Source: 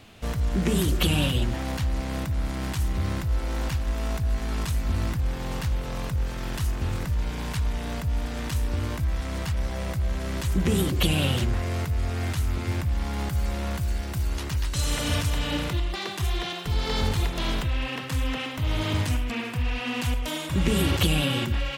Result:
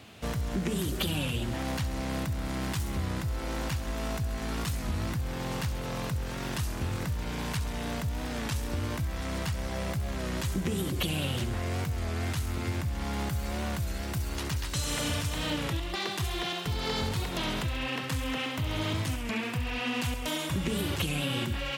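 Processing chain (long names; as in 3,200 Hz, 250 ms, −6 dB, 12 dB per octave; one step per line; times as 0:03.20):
high-pass filter 77 Hz
downward compressor, threshold −27 dBFS, peak gain reduction 9 dB
on a send: delay with a high-pass on its return 67 ms, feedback 62%, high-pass 4,900 Hz, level −7.5 dB
on the sum: wow of a warped record 33 1/3 rpm, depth 100 cents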